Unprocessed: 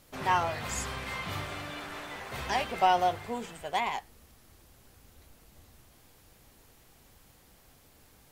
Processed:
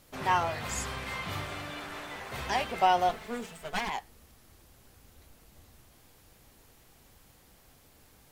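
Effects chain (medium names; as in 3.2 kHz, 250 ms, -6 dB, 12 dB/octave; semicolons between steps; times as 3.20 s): 3.09–3.90 s: comb filter that takes the minimum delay 4.6 ms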